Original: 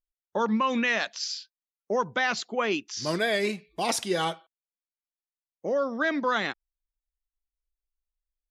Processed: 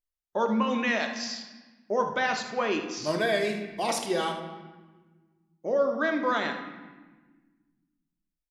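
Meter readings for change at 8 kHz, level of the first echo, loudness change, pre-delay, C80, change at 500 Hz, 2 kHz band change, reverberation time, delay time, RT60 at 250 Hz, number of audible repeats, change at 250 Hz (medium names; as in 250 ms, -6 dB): -3.0 dB, -11.5 dB, -0.5 dB, 3 ms, 9.5 dB, +1.0 dB, -1.5 dB, 1.4 s, 77 ms, 2.1 s, 1, 0.0 dB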